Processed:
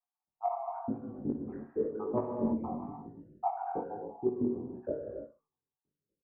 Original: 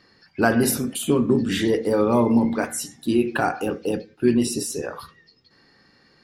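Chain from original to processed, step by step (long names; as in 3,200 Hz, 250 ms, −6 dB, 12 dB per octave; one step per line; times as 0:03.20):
time-frequency cells dropped at random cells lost 81%
noise gate −53 dBFS, range −29 dB
Butterworth low-pass 1,000 Hz 36 dB per octave
parametric band 370 Hz +3.5 dB
reversed playback
downward compressor 5 to 1, threshold −34 dBFS, peak gain reduction 19 dB
reversed playback
pitch vibrato 0.98 Hz 31 cents
on a send: repeating echo 62 ms, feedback 19%, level −13 dB
on the sum: reverb whose tail is shaped and stops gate 350 ms flat, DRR 0.5 dB
chorus effect 0.96 Hz, delay 18 ms, depth 4.6 ms
level +6.5 dB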